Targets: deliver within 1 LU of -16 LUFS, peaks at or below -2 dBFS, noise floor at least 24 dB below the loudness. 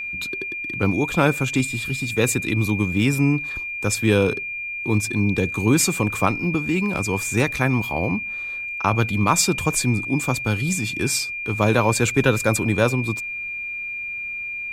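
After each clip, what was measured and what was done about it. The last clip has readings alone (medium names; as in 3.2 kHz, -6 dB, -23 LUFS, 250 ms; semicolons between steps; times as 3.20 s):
steady tone 2.4 kHz; tone level -27 dBFS; loudness -21.5 LUFS; peak level -3.0 dBFS; loudness target -16.0 LUFS
-> band-stop 2.4 kHz, Q 30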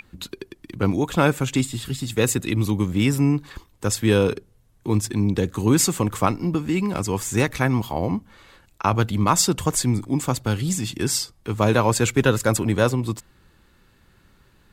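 steady tone not found; loudness -22.0 LUFS; peak level -3.0 dBFS; loudness target -16.0 LUFS
-> trim +6 dB; peak limiter -2 dBFS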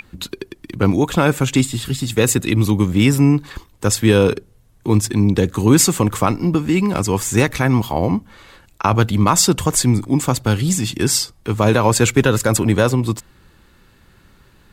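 loudness -16.5 LUFS; peak level -2.0 dBFS; noise floor -52 dBFS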